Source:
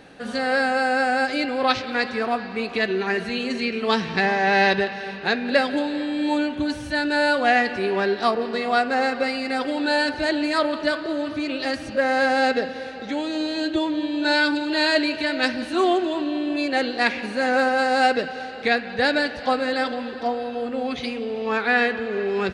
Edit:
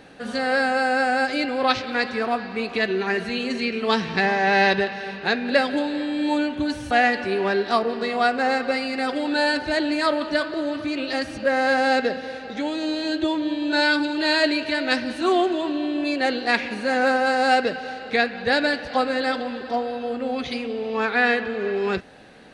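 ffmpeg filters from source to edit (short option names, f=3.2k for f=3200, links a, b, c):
-filter_complex "[0:a]asplit=2[a][b];[a]atrim=end=6.912[c];[b]atrim=start=7.428[d];[c][d]acrossfade=d=0.004:c1=hsin:c2=hsin"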